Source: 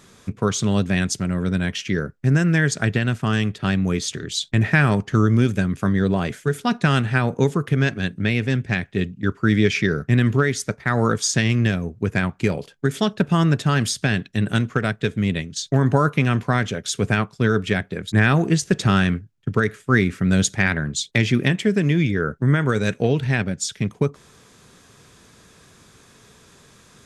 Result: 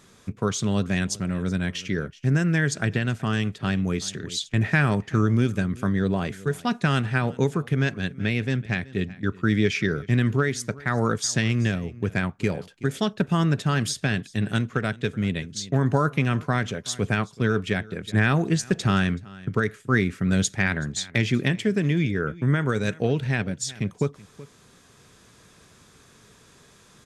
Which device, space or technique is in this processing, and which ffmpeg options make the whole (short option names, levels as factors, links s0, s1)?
ducked delay: -filter_complex "[0:a]asplit=3[s0][s1][s2];[s1]adelay=377,volume=0.501[s3];[s2]apad=whole_len=1209873[s4];[s3][s4]sidechaincompress=threshold=0.0282:ratio=12:attack=25:release=1020[s5];[s0][s5]amix=inputs=2:normalize=0,volume=0.631"